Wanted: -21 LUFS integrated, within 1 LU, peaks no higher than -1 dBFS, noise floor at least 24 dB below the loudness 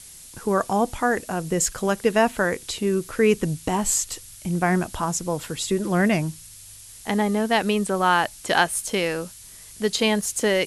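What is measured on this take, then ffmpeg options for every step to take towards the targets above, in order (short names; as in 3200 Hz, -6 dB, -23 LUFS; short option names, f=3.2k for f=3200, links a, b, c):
noise floor -44 dBFS; noise floor target -47 dBFS; loudness -23.0 LUFS; peak -5.0 dBFS; loudness target -21.0 LUFS
-> -af "afftdn=nr=6:nf=-44"
-af "volume=2dB"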